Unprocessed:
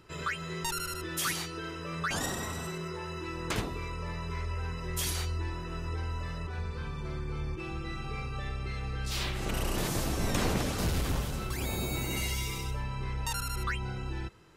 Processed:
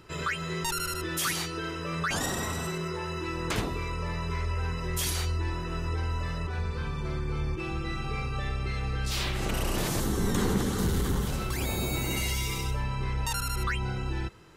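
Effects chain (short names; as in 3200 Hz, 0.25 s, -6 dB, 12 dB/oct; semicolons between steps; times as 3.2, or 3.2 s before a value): 10–11.27 thirty-one-band EQ 200 Hz +7 dB, 400 Hz +6 dB, 630 Hz -12 dB, 2500 Hz -11 dB, 5000 Hz -6 dB; in parallel at +2 dB: limiter -26.5 dBFS, peak gain reduction 10.5 dB; on the sum: gain -2.5 dB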